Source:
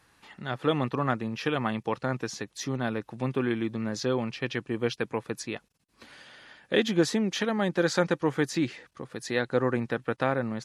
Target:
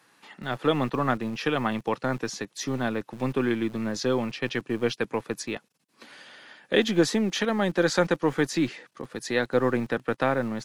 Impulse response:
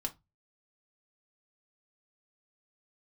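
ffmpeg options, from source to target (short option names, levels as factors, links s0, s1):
-filter_complex "[0:a]highpass=f=49:w=0.5412,highpass=f=49:w=1.3066,acrossover=split=140[s0][s1];[s0]acrusher=bits=5:dc=4:mix=0:aa=0.000001[s2];[s2][s1]amix=inputs=2:normalize=0,volume=1.33"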